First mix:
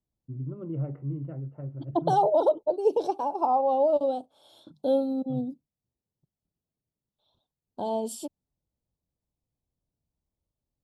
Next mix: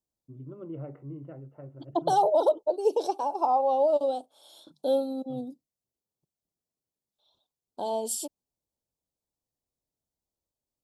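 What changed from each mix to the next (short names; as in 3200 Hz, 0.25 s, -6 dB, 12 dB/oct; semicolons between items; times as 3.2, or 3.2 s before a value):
master: add tone controls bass -11 dB, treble +9 dB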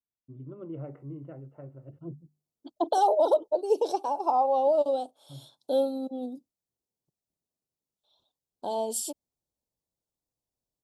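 second voice: entry +0.85 s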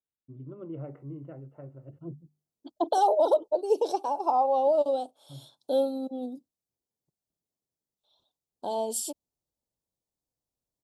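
none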